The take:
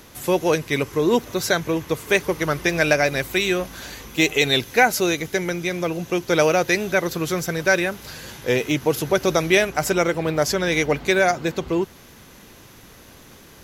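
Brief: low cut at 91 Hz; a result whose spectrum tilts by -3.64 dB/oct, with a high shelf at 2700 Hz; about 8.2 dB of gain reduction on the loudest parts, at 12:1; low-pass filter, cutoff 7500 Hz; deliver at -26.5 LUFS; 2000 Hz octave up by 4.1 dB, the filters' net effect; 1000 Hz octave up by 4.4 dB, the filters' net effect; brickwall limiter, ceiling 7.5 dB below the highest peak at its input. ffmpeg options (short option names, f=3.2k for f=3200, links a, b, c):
-af "highpass=91,lowpass=7.5k,equalizer=f=1k:t=o:g=6,equalizer=f=2k:t=o:g=5.5,highshelf=f=2.7k:g=-5.5,acompressor=threshold=-16dB:ratio=12,volume=-1.5dB,alimiter=limit=-13.5dB:level=0:latency=1"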